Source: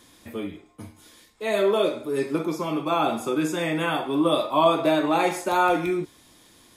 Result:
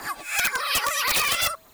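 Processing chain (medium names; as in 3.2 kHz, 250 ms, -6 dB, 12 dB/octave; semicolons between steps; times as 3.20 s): reverse spectral sustain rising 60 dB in 1.38 s; wide varispeed 3.9×; frequency shift -62 Hz; phaser 1.8 Hz, delay 2.1 ms, feedback 50%; integer overflow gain 10 dB; de-hum 215.7 Hz, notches 3; three bands compressed up and down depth 40%; trim -5 dB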